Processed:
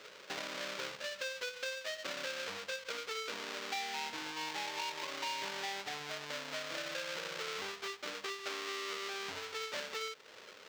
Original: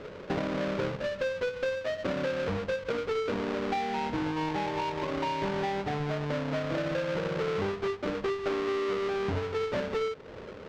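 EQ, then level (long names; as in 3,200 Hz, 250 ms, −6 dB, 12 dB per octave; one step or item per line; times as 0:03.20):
first difference
+8.5 dB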